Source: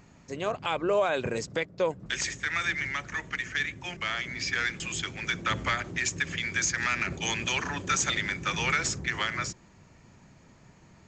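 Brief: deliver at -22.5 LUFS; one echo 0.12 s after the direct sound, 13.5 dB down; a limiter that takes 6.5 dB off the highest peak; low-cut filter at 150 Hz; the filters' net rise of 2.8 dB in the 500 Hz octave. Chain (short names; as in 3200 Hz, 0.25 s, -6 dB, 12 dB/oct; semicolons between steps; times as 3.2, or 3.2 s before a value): HPF 150 Hz; bell 500 Hz +3.5 dB; limiter -20.5 dBFS; echo 0.12 s -13.5 dB; gain +8.5 dB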